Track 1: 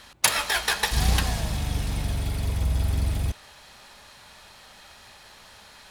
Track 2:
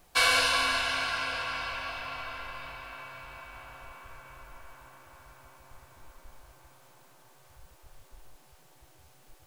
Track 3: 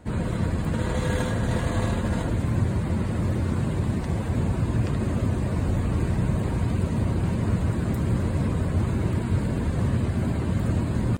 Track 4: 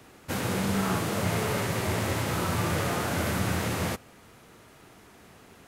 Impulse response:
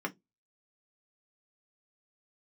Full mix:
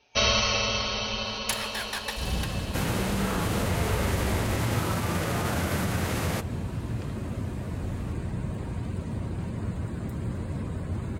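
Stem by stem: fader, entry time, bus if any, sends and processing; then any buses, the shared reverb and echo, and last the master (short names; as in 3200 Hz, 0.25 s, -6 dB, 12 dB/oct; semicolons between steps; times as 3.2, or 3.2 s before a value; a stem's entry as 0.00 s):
-9.5 dB, 1.25 s, no send, dry
+2.5 dB, 0.00 s, no send, FFT band-pass 690–4800 Hz; comb 5.9 ms, depth 73%; ring modulator 1600 Hz
-8.0 dB, 2.15 s, no send, dry
+1.0 dB, 2.45 s, no send, limiter -21 dBFS, peak gain reduction 5.5 dB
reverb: off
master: dry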